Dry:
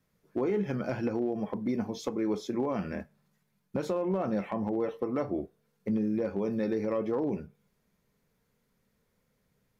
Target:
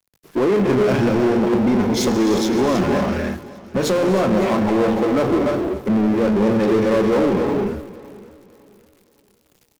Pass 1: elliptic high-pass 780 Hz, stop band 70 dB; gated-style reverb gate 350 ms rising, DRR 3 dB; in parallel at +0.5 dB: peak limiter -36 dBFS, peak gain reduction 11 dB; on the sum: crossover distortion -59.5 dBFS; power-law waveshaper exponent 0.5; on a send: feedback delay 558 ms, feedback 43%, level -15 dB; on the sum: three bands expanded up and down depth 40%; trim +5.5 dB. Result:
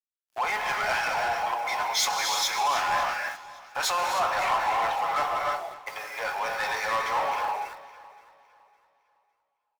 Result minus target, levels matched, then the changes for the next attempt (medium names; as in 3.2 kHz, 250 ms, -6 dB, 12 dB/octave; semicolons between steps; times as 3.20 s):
1 kHz band +10.0 dB
remove: elliptic high-pass 780 Hz, stop band 70 dB